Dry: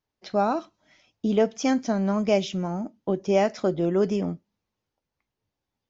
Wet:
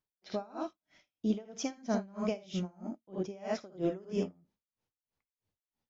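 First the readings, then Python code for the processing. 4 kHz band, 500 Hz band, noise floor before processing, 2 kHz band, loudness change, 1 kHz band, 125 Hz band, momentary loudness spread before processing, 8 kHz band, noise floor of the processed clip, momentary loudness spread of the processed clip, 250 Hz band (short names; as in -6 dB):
-10.0 dB, -13.0 dB, under -85 dBFS, -12.5 dB, -11.5 dB, -15.0 dB, -11.0 dB, 9 LU, n/a, under -85 dBFS, 7 LU, -10.0 dB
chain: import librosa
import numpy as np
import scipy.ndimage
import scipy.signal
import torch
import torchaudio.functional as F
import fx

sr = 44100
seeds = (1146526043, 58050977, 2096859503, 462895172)

y = fx.room_early_taps(x, sr, ms=(56, 78), db=(-6.0, -4.5))
y = y * 10.0 ** (-29 * (0.5 - 0.5 * np.cos(2.0 * np.pi * 3.1 * np.arange(len(y)) / sr)) / 20.0)
y = y * 10.0 ** (-5.0 / 20.0)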